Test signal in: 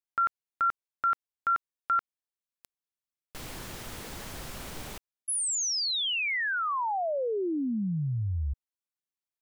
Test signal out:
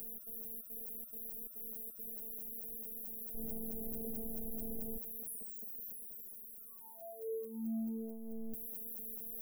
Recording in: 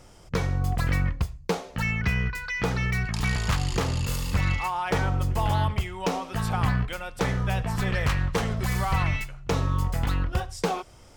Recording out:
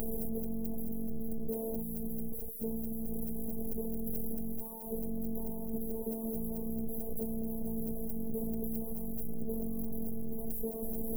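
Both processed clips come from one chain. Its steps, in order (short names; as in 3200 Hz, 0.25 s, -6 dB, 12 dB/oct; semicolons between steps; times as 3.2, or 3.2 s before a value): infinite clipping; inverse Chebyshev band-stop 1800–4200 Hz, stop band 80 dB; robotiser 224 Hz; gain -3.5 dB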